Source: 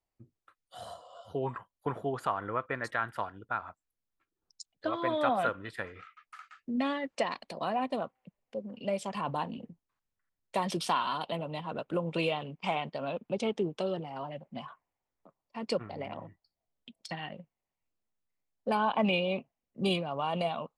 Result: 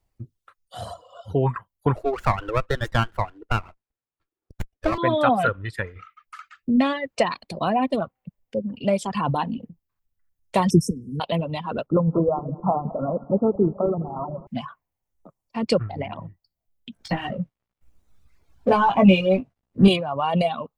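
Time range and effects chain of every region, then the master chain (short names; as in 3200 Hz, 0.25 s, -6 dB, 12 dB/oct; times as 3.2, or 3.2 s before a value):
1.96–4.98 steep high-pass 290 Hz + running maximum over 9 samples
10.7–11.2 brick-wall FIR band-stop 500–5200 Hz + low shelf 280 Hz +9.5 dB
11.86–14.47 regenerating reverse delay 0.106 s, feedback 73%, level -10 dB + brick-wall FIR low-pass 1400 Hz
16.92–19.88 G.711 law mismatch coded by mu + LPF 1900 Hz 6 dB/oct + doubler 16 ms -3 dB
whole clip: bell 92 Hz +3.5 dB 1 oct; reverb removal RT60 1.6 s; low shelf 190 Hz +11 dB; gain +9 dB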